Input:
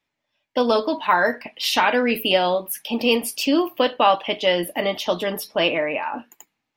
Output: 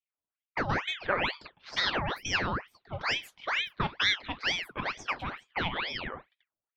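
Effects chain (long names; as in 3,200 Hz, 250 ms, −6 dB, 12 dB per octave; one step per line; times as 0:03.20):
bass and treble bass −7 dB, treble −14 dB
low-pass that shuts in the quiet parts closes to 340 Hz, open at −19.5 dBFS
ring modulator whose carrier an LFO sweeps 1,600 Hz, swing 80%, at 2.2 Hz
level −7.5 dB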